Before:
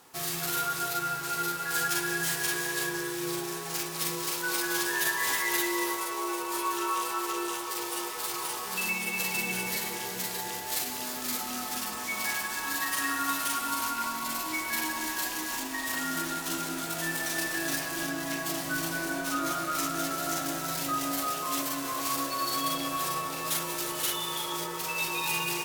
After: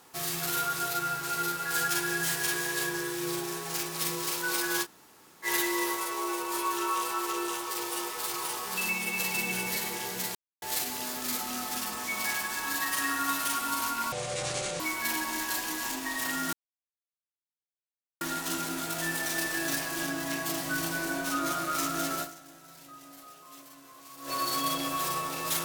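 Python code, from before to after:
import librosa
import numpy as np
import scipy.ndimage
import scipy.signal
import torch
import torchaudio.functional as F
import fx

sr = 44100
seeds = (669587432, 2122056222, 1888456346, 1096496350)

y = fx.edit(x, sr, fx.room_tone_fill(start_s=4.84, length_s=0.61, crossfade_s=0.06),
    fx.silence(start_s=10.35, length_s=0.27),
    fx.speed_span(start_s=14.12, length_s=0.36, speed=0.53),
    fx.insert_silence(at_s=16.21, length_s=1.68),
    fx.fade_down_up(start_s=20.22, length_s=2.08, db=-19.0, fade_s=0.39, curve='exp'), tone=tone)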